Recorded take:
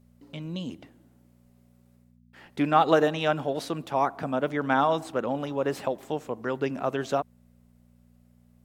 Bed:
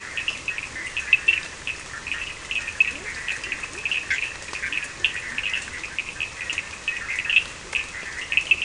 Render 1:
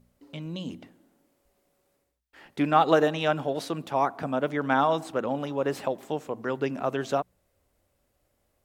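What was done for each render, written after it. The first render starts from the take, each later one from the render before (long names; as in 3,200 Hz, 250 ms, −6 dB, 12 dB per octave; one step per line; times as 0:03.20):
hum removal 60 Hz, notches 4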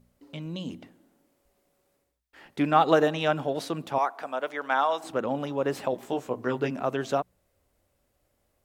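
0:03.98–0:05.04: high-pass filter 580 Hz
0:05.91–0:06.71: double-tracking delay 16 ms −3.5 dB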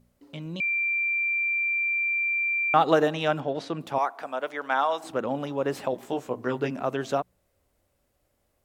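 0:00.60–0:02.74: beep over 2,360 Hz −23 dBFS
0:03.40–0:03.81: high-frequency loss of the air 92 metres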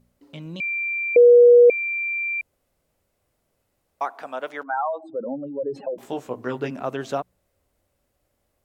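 0:01.16–0:01.70: beep over 482 Hz −7.5 dBFS
0:02.41–0:04.01: fill with room tone
0:04.63–0:05.98: expanding power law on the bin magnitudes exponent 2.9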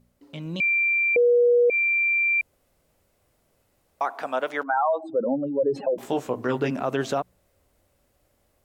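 automatic gain control gain up to 5 dB
brickwall limiter −14.5 dBFS, peak gain reduction 11 dB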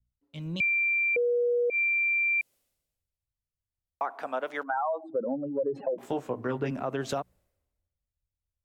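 downward compressor 3 to 1, threshold −29 dBFS, peak gain reduction 9 dB
multiband upward and downward expander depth 100%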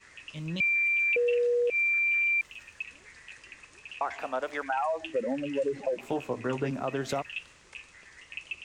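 mix in bed −19.5 dB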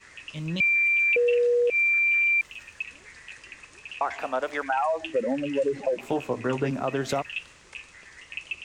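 level +4 dB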